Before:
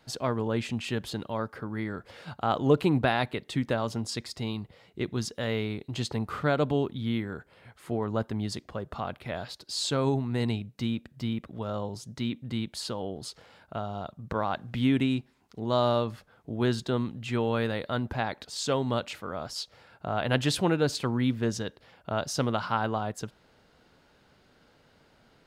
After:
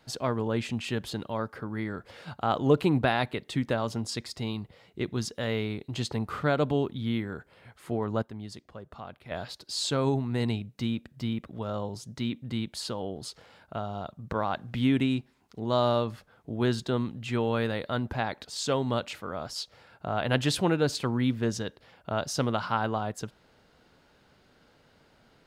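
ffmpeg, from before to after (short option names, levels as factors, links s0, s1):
-filter_complex "[0:a]asplit=3[s0][s1][s2];[s0]atrim=end=8.222[s3];[s1]atrim=start=8.218:end=9.312,asetpts=PTS-STARTPTS,volume=0.376[s4];[s2]atrim=start=9.308[s5];[s3][s4]acrossfade=d=0.004:c1=hsin:c2=hsin[s6];[s6][s5]acrossfade=d=0.004:c1=hsin:c2=hsin"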